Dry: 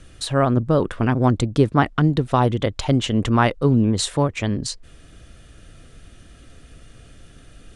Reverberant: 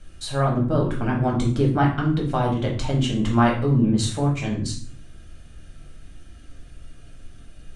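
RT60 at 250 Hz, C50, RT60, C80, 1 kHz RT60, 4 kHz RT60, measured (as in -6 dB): 0.80 s, 6.5 dB, 0.50 s, 11.0 dB, 0.45 s, 0.40 s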